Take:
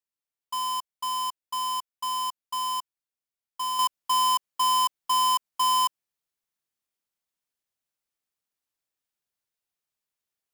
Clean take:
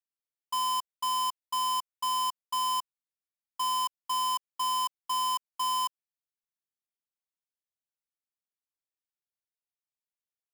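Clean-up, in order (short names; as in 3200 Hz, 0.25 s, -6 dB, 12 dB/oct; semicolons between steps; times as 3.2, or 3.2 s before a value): gain correction -6.5 dB, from 3.79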